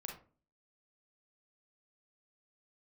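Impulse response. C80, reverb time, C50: 12.0 dB, 0.40 s, 5.0 dB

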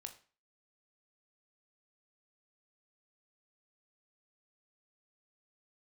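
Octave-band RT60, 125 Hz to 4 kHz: 0.40, 0.40, 0.40, 0.40, 0.40, 0.35 s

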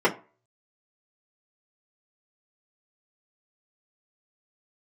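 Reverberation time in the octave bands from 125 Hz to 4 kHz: 0.35, 0.30, 0.35, 0.35, 0.30, 0.20 s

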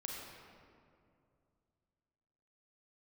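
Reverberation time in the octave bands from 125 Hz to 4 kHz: 3.2, 2.9, 2.6, 2.3, 1.8, 1.3 s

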